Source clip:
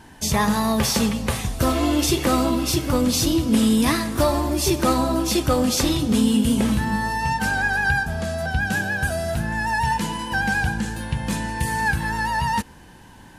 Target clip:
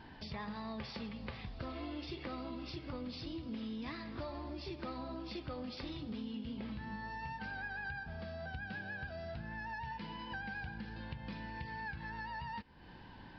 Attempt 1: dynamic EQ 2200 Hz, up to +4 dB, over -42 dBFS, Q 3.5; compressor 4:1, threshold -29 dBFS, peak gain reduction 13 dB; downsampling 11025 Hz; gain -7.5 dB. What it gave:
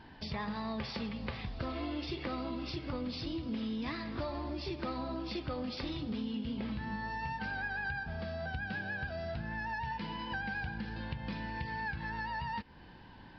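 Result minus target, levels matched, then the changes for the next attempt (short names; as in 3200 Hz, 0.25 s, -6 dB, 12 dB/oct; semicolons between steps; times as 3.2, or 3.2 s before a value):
compressor: peak gain reduction -5 dB
change: compressor 4:1, threshold -36 dBFS, peak gain reduction 18 dB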